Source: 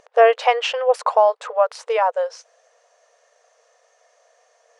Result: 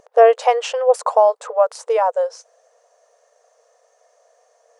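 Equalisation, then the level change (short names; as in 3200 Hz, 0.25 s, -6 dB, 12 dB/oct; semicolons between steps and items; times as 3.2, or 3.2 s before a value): bell 2600 Hz -11.5 dB 2.6 oct; dynamic EQ 7700 Hz, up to +7 dB, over -52 dBFS, Q 1.2; +5.0 dB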